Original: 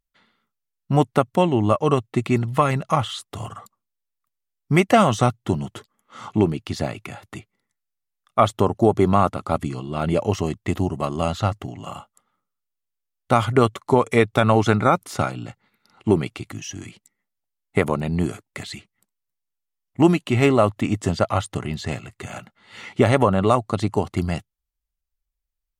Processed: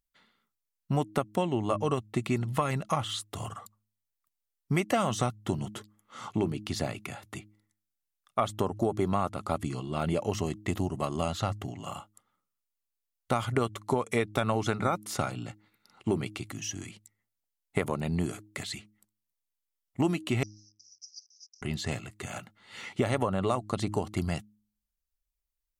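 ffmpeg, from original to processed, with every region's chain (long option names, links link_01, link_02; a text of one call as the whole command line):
ffmpeg -i in.wav -filter_complex "[0:a]asettb=1/sr,asplit=3[link_01][link_02][link_03];[link_01]atrim=end=20.434[link_04];[link_02]atrim=start=20.43:end=21.62,asetpts=PTS-STARTPTS,afade=type=in:duration=0.004:curve=qsin,afade=type=out:start_time=1.186:duration=0.004:curve=qsin,acrusher=bits=8:dc=4:mix=0:aa=0.000001,asuperpass=centerf=5500:order=8:qfactor=4.5[link_05];[link_03]atrim=start=21.616[link_06];[link_04][link_05]acrossfade=duration=0.004:curve1=hsin:curve2=qsin[link_07];[link_07][link_06]acrossfade=duration=0.004:curve1=qsin:curve2=hsin,highshelf=frequency=4700:gain=6,bandreject=frequency=105.1:width_type=h:width=4,bandreject=frequency=210.2:width_type=h:width=4,bandreject=frequency=315.3:width_type=h:width=4,acompressor=threshold=-20dB:ratio=3,volume=-5dB" out.wav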